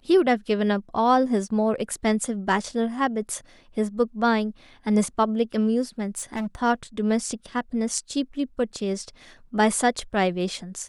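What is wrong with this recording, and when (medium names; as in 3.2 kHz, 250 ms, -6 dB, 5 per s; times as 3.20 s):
6.17–6.55 s: clipped -25 dBFS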